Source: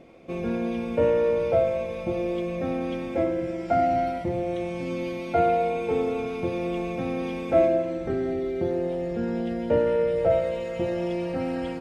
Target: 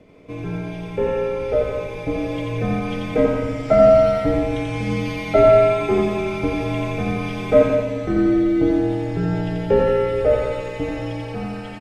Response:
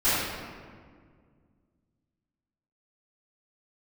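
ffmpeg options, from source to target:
-af "dynaudnorm=f=470:g=9:m=2.82,aecho=1:1:87|174|261|348|435|522|609|696:0.708|0.396|0.222|0.124|0.0696|0.039|0.0218|0.0122,afreqshift=-57"

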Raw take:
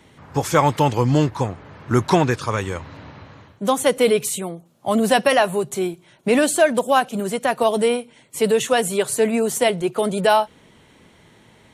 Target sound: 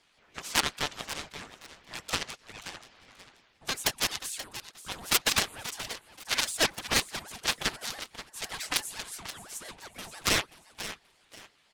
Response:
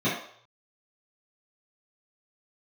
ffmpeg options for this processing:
-filter_complex "[0:a]asplit=3[s0][s1][s2];[s0]afade=t=out:st=2.18:d=0.02[s3];[s1]agate=range=0.1:threshold=0.1:ratio=16:detection=peak,afade=t=in:st=2.18:d=0.02,afade=t=out:st=2.63:d=0.02[s4];[s2]afade=t=in:st=2.63:d=0.02[s5];[s3][s4][s5]amix=inputs=3:normalize=0,acrossover=split=360 5400:gain=0.0794 1 0.158[s6][s7][s8];[s6][s7][s8]amix=inputs=3:normalize=0,asplit=3[s9][s10][s11];[s9]afade=t=out:st=9.07:d=0.02[s12];[s10]acompressor=threshold=0.0398:ratio=6,afade=t=in:st=9.07:d=0.02,afade=t=out:st=9.68:d=0.02[s13];[s11]afade=t=in:st=9.68:d=0.02[s14];[s12][s13][s14]amix=inputs=3:normalize=0,aeval=exprs='0.631*(cos(1*acos(clip(val(0)/0.631,-1,1)))-cos(1*PI/2))+0.178*(cos(7*acos(clip(val(0)/0.631,-1,1)))-cos(7*PI/2))':c=same,asettb=1/sr,asplit=3[s15][s16][s17];[s15]atrim=end=5.404[s18];[s16]atrim=start=5.4:end=6.4,asetpts=PTS-STARTPTS,afade=t=in:d=0.004:c=qsin,afade=t=out:st=0.996:d=0.004:c=qsin,adynamicequalizer=threshold=0.0158:dfrequency=1900:dqfactor=1:tfrequency=1900:tqfactor=1:attack=5:release=100:ratio=0.375:range=3.5:mode=boostabove:tftype=bell[s19];[s17]atrim=start=6.396[s20];[s18][s19]acrossfade=d=0.004:c1=hsin:c2=qsin[s21];[s21][s20]acrossfade=d=0.004:c1=qsin:c2=hsin,aeval=exprs='0.841*(cos(1*acos(clip(val(0)/0.841,-1,1)))-cos(1*PI/2))+0.075*(cos(6*acos(clip(val(0)/0.841,-1,1)))-cos(6*PI/2))+0.0266*(cos(7*acos(clip(val(0)/0.841,-1,1)))-cos(7*PI/2))':c=same,aecho=1:1:531|1062|1593:0.237|0.0617|0.016,crystalizer=i=8:c=0,aeval=exprs='val(0)*sin(2*PI*780*n/s+780*0.7/5.9*sin(2*PI*5.9*n/s))':c=same,volume=0.188"

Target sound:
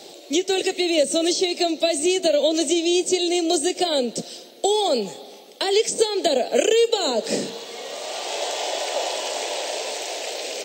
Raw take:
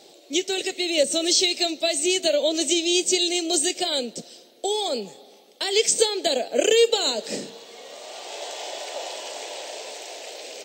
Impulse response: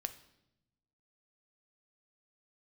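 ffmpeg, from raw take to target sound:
-filter_complex "[0:a]acrossover=split=450|1100[s0][s1][s2];[s0]acompressor=threshold=0.0251:ratio=4[s3];[s1]acompressor=threshold=0.0355:ratio=4[s4];[s2]acompressor=threshold=0.02:ratio=4[s5];[s3][s4][s5]amix=inputs=3:normalize=0,volume=2.51"

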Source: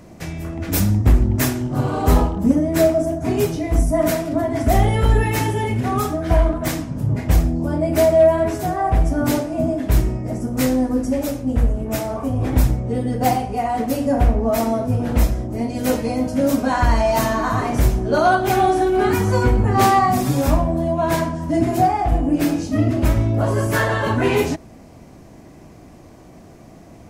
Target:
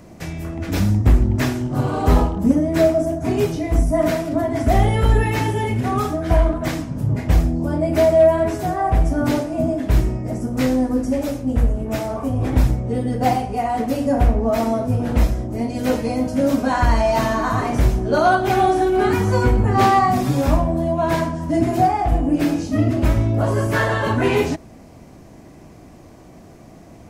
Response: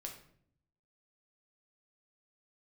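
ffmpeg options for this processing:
-filter_complex "[0:a]acrossover=split=5300[s0][s1];[s1]acompressor=threshold=0.0112:ratio=4:attack=1:release=60[s2];[s0][s2]amix=inputs=2:normalize=0"

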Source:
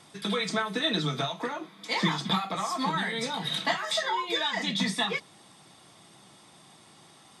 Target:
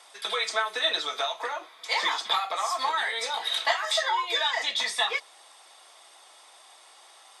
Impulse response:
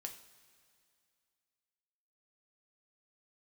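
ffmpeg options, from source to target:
-af "highpass=f=540:w=0.5412,highpass=f=540:w=1.3066,volume=1.41"

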